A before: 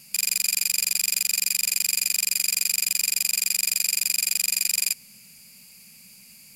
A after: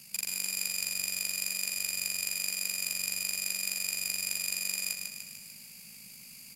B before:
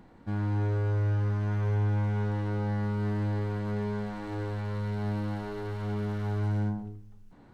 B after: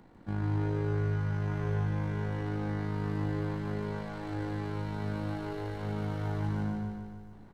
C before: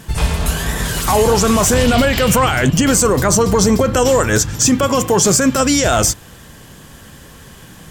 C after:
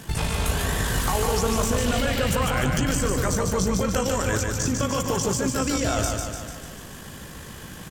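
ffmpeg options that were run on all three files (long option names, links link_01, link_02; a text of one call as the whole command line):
ffmpeg -i in.wav -filter_complex "[0:a]acrossover=split=94|1400[link_01][link_02][link_03];[link_01]acompressor=threshold=-27dB:ratio=4[link_04];[link_02]acompressor=threshold=-25dB:ratio=4[link_05];[link_03]acompressor=threshold=-29dB:ratio=4[link_06];[link_04][link_05][link_06]amix=inputs=3:normalize=0,tremolo=f=52:d=0.519,aecho=1:1:148|296|444|592|740|888|1036|1184:0.631|0.366|0.212|0.123|0.0714|0.0414|0.024|0.0139" out.wav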